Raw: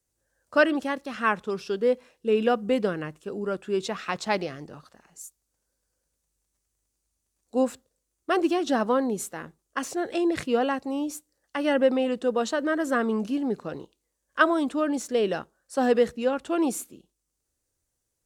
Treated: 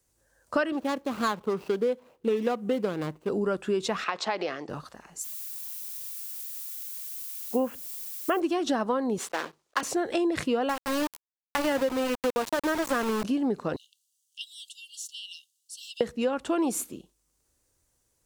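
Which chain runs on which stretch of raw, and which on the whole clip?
0.72–3.29 median filter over 25 samples + HPF 130 Hz 6 dB/oct + high shelf 11000 Hz +5.5 dB
4.04–4.69 compressor, threshold -27 dBFS + BPF 380–4700 Hz
5.23–8.39 brick-wall FIR low-pass 3400 Hz + added noise violet -45 dBFS
9.18–9.83 block floating point 3-bit + three-band isolator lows -21 dB, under 290 Hz, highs -14 dB, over 6500 Hz + notches 50/100/150/200 Hz
10.69–13.24 bell 72 Hz -3.5 dB 1.5 oct + sample gate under -27 dBFS
13.76–16.01 brick-wall FIR high-pass 2700 Hz + compressor 1.5:1, threshold -55 dBFS
whole clip: bell 1000 Hz +3 dB 0.42 oct; compressor 6:1, threshold -31 dBFS; gain +7 dB

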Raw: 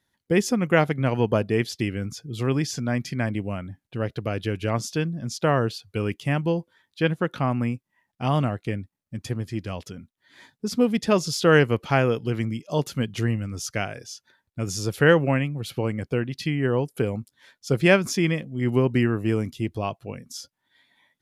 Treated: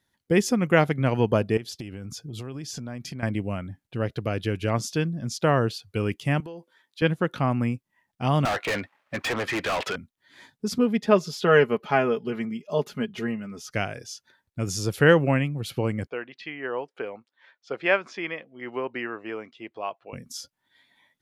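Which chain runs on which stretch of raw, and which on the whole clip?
1.57–3.23 bell 2000 Hz -5.5 dB 0.42 oct + compressor 16:1, threshold -31 dBFS
6.4–7.02 HPF 280 Hz + compressor 10:1, threshold -35 dBFS
8.45–9.96 three-band isolator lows -17 dB, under 510 Hz, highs -22 dB, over 2800 Hz + overdrive pedal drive 36 dB, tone 5700 Hz, clips at -18.5 dBFS
10.78–13.72 HPF 310 Hz 6 dB/oct + bell 8600 Hz -13 dB 2.2 oct + comb 4.8 ms, depth 68%
16.07–20.13 BPF 610–2600 Hz + air absorption 50 m
whole clip: dry

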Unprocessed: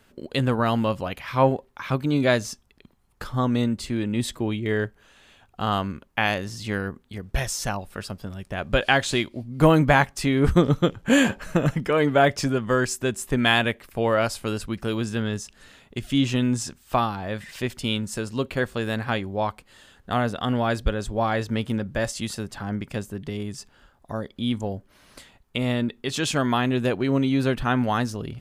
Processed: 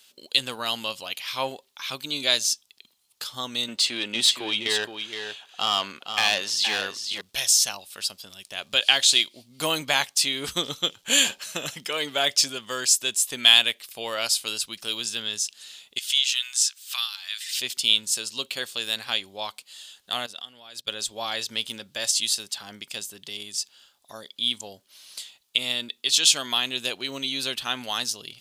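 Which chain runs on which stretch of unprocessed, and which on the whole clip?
3.68–7.21 overdrive pedal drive 20 dB, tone 1400 Hz, clips at -7 dBFS + echo 0.469 s -7.5 dB
15.98–17.6 HPF 1300 Hz 24 dB/oct + three-band squash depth 40%
20.26–20.88 HPF 48 Hz + level quantiser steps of 20 dB
whole clip: HPF 1500 Hz 6 dB/oct; resonant high shelf 2500 Hz +11.5 dB, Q 1.5; gain -1 dB

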